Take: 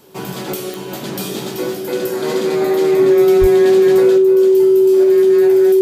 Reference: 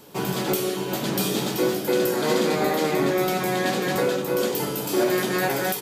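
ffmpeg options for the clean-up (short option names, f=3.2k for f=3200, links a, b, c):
-filter_complex "[0:a]adeclick=t=4,bandreject=f=380:w=30,asplit=3[a][b][c];[a]afade=t=out:st=3.4:d=0.02[d];[b]highpass=f=140:w=0.5412,highpass=f=140:w=1.3066,afade=t=in:st=3.4:d=0.02,afade=t=out:st=3.52:d=0.02[e];[c]afade=t=in:st=3.52:d=0.02[f];[d][e][f]amix=inputs=3:normalize=0,asetnsamples=n=441:p=0,asendcmd='4.18 volume volume 6.5dB',volume=0dB"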